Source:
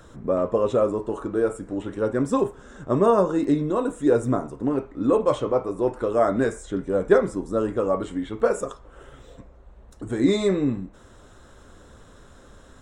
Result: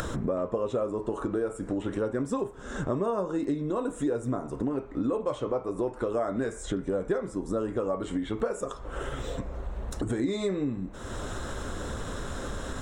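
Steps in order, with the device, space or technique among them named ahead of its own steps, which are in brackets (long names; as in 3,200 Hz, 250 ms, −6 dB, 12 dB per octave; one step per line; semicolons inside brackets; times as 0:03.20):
upward and downward compression (upward compression, threshold −23 dBFS; downward compressor 5 to 1, threshold −28 dBFS, peak gain reduction 15.5 dB)
level +1.5 dB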